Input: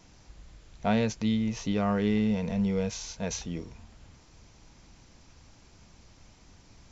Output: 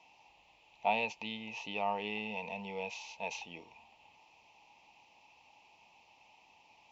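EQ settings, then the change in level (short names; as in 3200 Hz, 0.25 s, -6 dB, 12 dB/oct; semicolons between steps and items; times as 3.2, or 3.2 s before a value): double band-pass 1500 Hz, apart 1.6 oct; +8.0 dB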